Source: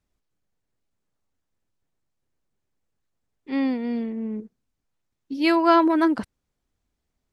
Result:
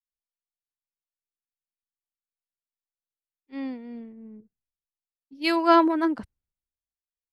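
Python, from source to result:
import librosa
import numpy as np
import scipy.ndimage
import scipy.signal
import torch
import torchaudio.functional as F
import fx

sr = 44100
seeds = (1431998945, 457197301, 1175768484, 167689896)

y = fx.band_widen(x, sr, depth_pct=100)
y = y * librosa.db_to_amplitude(-7.0)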